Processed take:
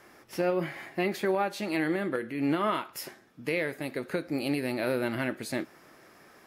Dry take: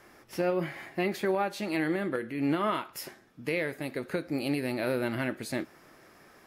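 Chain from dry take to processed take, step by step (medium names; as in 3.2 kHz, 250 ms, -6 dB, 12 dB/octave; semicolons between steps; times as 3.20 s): bass shelf 71 Hz -8.5 dB; trim +1 dB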